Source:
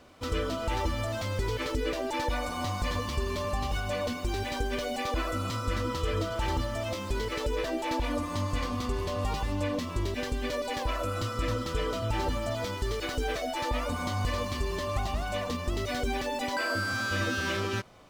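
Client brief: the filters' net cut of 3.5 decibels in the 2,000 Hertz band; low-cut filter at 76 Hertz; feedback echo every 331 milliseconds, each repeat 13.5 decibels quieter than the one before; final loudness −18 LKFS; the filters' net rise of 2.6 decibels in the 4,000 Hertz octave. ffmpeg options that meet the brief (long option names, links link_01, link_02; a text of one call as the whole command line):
ffmpeg -i in.wav -af "highpass=76,equalizer=frequency=2000:width_type=o:gain=-6,equalizer=frequency=4000:width_type=o:gain=5.5,aecho=1:1:331|662:0.211|0.0444,volume=14dB" out.wav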